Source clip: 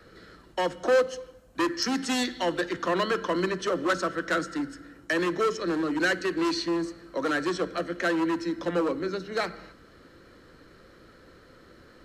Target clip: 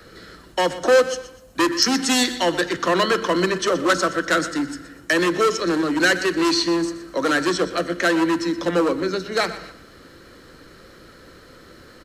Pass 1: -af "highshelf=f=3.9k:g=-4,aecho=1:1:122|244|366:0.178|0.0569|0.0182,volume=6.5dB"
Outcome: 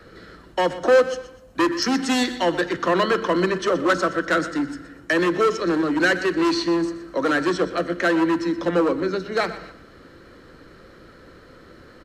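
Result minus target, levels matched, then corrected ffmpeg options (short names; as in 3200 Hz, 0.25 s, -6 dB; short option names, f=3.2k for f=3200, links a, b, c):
8000 Hz band -7.5 dB
-af "highshelf=f=3.9k:g=7.5,aecho=1:1:122|244|366:0.178|0.0569|0.0182,volume=6.5dB"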